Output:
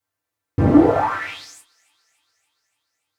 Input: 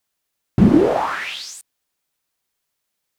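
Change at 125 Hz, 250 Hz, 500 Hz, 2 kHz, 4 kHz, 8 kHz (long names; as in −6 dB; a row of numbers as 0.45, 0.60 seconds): −1.0, −0.5, −0.5, −1.0, −7.5, −8.0 decibels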